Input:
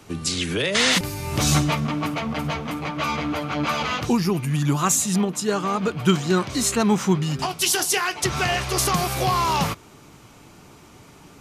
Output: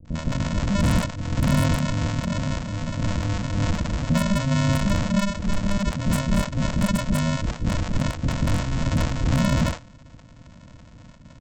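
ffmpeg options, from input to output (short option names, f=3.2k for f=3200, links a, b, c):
-filter_complex "[0:a]aresample=16000,acrusher=samples=40:mix=1:aa=0.000001,aresample=44100,aeval=exprs='0.168*(abs(mod(val(0)/0.168+3,4)-2)-1)':c=same,acrossover=split=490[a][b];[b]adelay=50[c];[a][c]amix=inputs=2:normalize=0,volume=2dB"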